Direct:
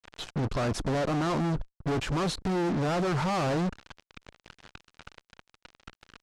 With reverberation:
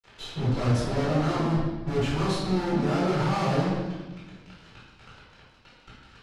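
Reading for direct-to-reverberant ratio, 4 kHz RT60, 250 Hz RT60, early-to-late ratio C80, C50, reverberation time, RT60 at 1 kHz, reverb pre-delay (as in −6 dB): −8.5 dB, 1.1 s, 1.8 s, 2.5 dB, −0.5 dB, 1.2 s, 1.1 s, 5 ms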